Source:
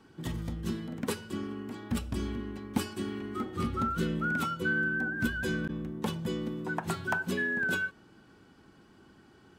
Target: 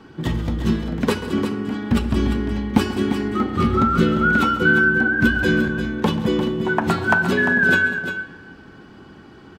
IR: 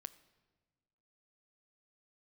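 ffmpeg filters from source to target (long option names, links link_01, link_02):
-filter_complex "[0:a]equalizer=frequency=9900:width=0.77:gain=-12.5,aecho=1:1:137|197|349:0.168|0.15|0.355,asplit=2[link_01][link_02];[1:a]atrim=start_sample=2205,asetrate=24255,aresample=44100[link_03];[link_02][link_03]afir=irnorm=-1:irlink=0,volume=15.5dB[link_04];[link_01][link_04]amix=inputs=2:normalize=0,volume=-1.5dB"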